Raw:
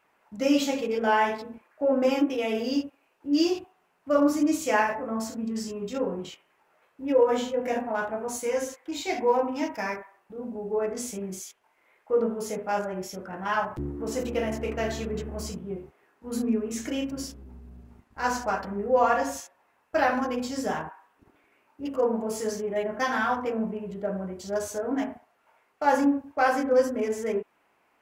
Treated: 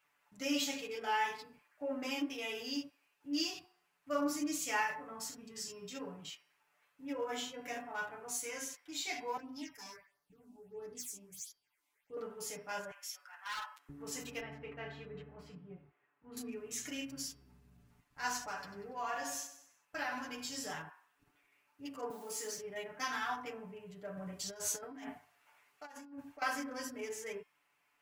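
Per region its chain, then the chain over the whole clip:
9.37–12.17 s: self-modulated delay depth 0.052 ms + peaking EQ 890 Hz -8 dB 2 oct + phase shifter stages 6, 1.5 Hz, lowest notch 120–2700 Hz
12.91–13.89 s: high-pass 990 Hz 24 dB/octave + hard clipper -28 dBFS
14.40–16.37 s: high-pass 43 Hz + distance through air 480 m
18.40–20.72 s: doubling 13 ms -12 dB + compression 2.5:1, threshold -24 dBFS + feedback delay 95 ms, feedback 44%, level -12 dB
22.10–22.58 s: steep high-pass 190 Hz + word length cut 10-bit, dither triangular
24.17–26.42 s: hum notches 50/100/150 Hz + compressor with a negative ratio -34 dBFS
whole clip: amplifier tone stack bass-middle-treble 5-5-5; comb 6.9 ms, depth 77%; de-hum 356.2 Hz, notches 16; trim +1.5 dB

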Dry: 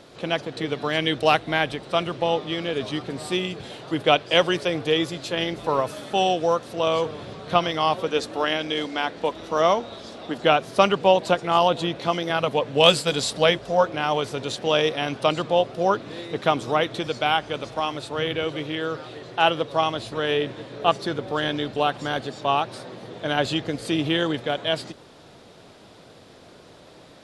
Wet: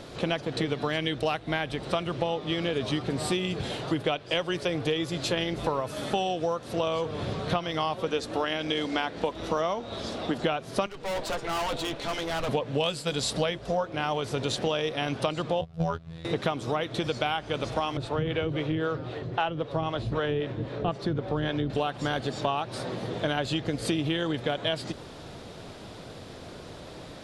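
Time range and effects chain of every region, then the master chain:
10.86–12.49 s: bass shelf 230 Hz -9.5 dB + comb of notches 180 Hz + valve stage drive 31 dB, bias 0.65
15.61–16.25 s: gate -25 dBFS, range -15 dB + resonant low shelf 200 Hz +11 dB, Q 3 + robot voice 82.3 Hz
17.97–21.70 s: low-pass 2.5 kHz 6 dB/octave + bass shelf 170 Hz +7 dB + harmonic tremolo 3.8 Hz, crossover 410 Hz
whole clip: bass shelf 110 Hz +10 dB; compression 12:1, threshold -28 dBFS; trim +4 dB

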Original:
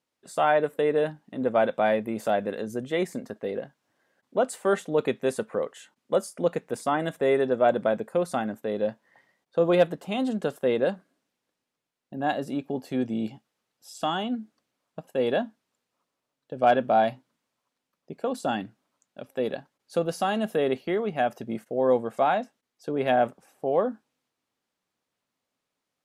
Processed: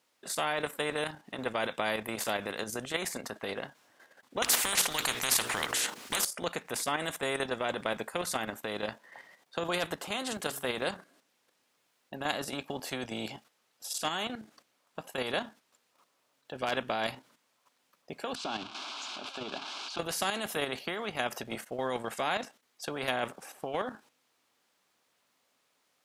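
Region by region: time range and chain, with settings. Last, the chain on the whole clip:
4.42–6.25 s: hum notches 60/120/180/240/300/360/420/480 Hz + spectrum-flattening compressor 10:1
10.29–10.83 s: treble shelf 9.1 kHz +8.5 dB + de-hum 138.2 Hz, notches 3
18.35–19.99 s: zero-crossing glitches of -22.5 dBFS + low-pass 3.3 kHz 24 dB/octave + static phaser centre 510 Hz, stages 6
whole clip: bass shelf 320 Hz -11.5 dB; level held to a coarse grid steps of 9 dB; spectrum-flattening compressor 2:1; trim +4 dB

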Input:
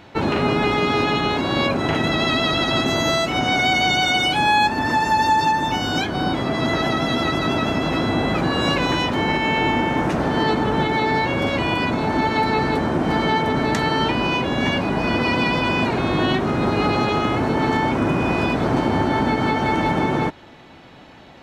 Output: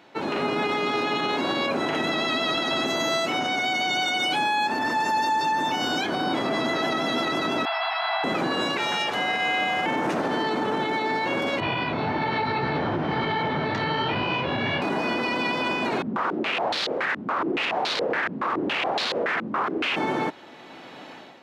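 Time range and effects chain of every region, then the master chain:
7.65–8.24 s: brick-wall FIR band-pass 630–5300 Hz + distance through air 61 m
8.77–9.86 s: high-pass 860 Hz 6 dB/octave + frequency shift -140 Hz
11.60–14.82 s: low-pass 4.4 kHz 24 dB/octave + resonant low shelf 170 Hz +10.5 dB, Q 1.5 + detune thickener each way 40 cents
16.02–19.96 s: echo whose repeats swap between lows and highs 167 ms, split 860 Hz, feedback 51%, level -4 dB + integer overflow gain 17.5 dB + step-sequenced low-pass 7.1 Hz 220–4100 Hz
whole clip: high-pass 250 Hz 12 dB/octave; level rider; peak limiter -10.5 dBFS; trim -6.5 dB

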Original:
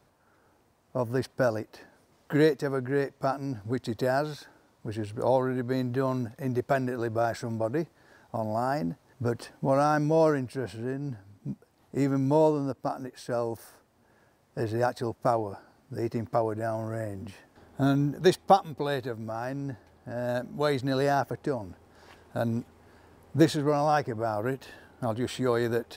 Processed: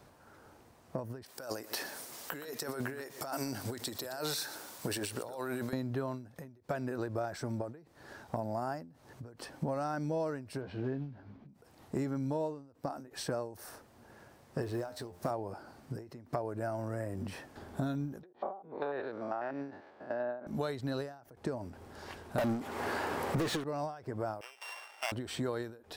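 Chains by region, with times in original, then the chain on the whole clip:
1.26–5.73 s: RIAA curve recording + compressor with a negative ratio -40 dBFS + delay 118 ms -17.5 dB
10.61–11.49 s: block-companded coder 5-bit + distance through air 290 m + doubling 15 ms -6 dB
14.62–15.31 s: companding laws mixed up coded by mu + treble shelf 6 kHz +4 dB + feedback comb 88 Hz, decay 0.21 s
18.23–20.47 s: spectrogram pixelated in time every 100 ms + band-pass 380–3200 Hz + low-pass that closes with the level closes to 600 Hz, closed at -25 dBFS
22.38–23.64 s: treble shelf 9.5 kHz +11 dB + overdrive pedal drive 38 dB, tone 2.1 kHz, clips at -8 dBFS
24.41–25.12 s: sorted samples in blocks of 16 samples + high-pass 700 Hz 24 dB/octave + treble shelf 9.4 kHz -10.5 dB
whole clip: compression 6:1, threshold -39 dBFS; endings held to a fixed fall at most 110 dB/s; trim +6 dB

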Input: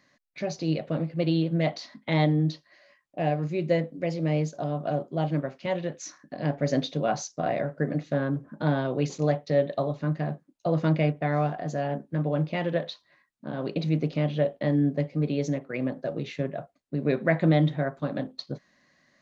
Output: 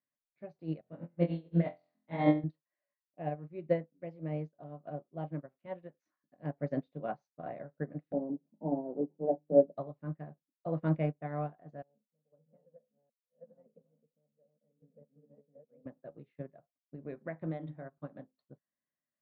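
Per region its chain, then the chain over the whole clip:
0.81–2.44 s: flutter echo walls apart 4 m, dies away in 0.58 s + upward expansion, over -30 dBFS
8.12–9.77 s: Chebyshev band-pass 170–920 Hz, order 5 + tilt EQ -3 dB/octave + hum notches 50/100/150/200/250/300/350 Hz
11.82–15.86 s: chunks repeated in reverse 638 ms, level -2 dB + two resonant band-passes 330 Hz, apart 1.1 oct + random-step tremolo 4 Hz, depth 75%
16.95–17.98 s: hum notches 50/100/150/200/250/300 Hz + compression 2:1, threshold -24 dBFS
whole clip: low-pass 1.7 kHz 12 dB/octave; upward expansion 2.5:1, over -38 dBFS

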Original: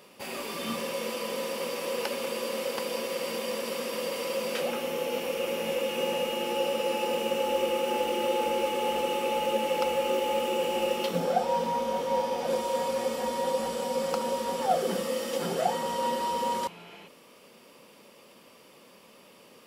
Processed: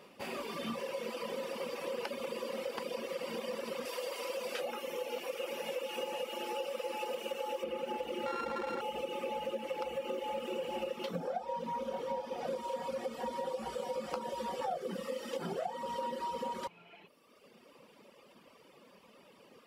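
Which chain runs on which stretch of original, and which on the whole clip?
3.85–7.64 s: tone controls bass -15 dB, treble +5 dB + doubling 12 ms -13.5 dB
8.26–8.81 s: sorted samples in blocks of 32 samples + low-pass 2.4 kHz 6 dB/octave + level flattener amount 100%
13.50–14.88 s: band-stop 250 Hz, Q 6.1 + doubling 14 ms -5 dB
whole clip: reverb removal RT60 1.5 s; treble shelf 4.5 kHz -10 dB; compression, threshold -33 dBFS; trim -1 dB

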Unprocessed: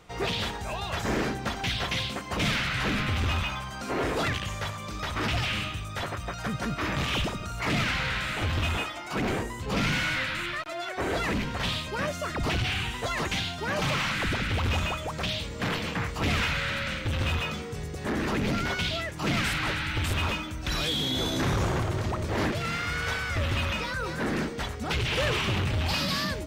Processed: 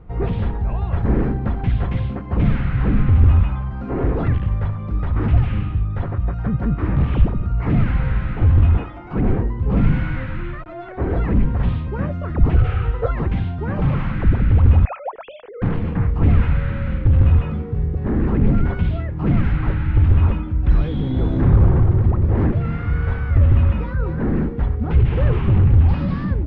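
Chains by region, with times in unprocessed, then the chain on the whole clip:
12.56–13.11 s: peaking EQ 250 Hz -12 dB 1.1 oct + small resonant body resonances 490/1300 Hz, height 16 dB, ringing for 30 ms
14.85–15.62 s: formants replaced by sine waves + hum notches 50/100/150/200/250 Hz
whole clip: low-pass 2.1 kHz 12 dB/octave; tilt EQ -4.5 dB/octave; band-stop 620 Hz, Q 12

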